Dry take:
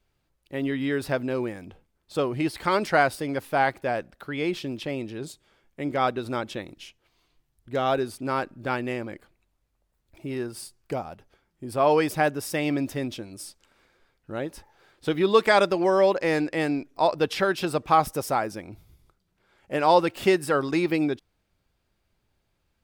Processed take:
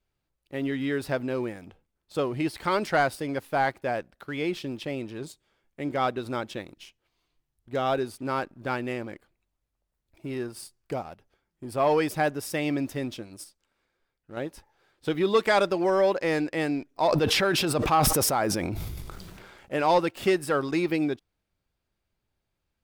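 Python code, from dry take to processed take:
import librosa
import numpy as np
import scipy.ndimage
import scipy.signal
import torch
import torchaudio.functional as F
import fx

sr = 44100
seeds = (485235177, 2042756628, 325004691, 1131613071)

y = fx.sustainer(x, sr, db_per_s=21.0, at=(17.02, 19.83))
y = fx.edit(y, sr, fx.clip_gain(start_s=13.44, length_s=0.93, db=-5.0), tone=tone)
y = fx.leveller(y, sr, passes=1)
y = F.gain(torch.from_numpy(y), -5.5).numpy()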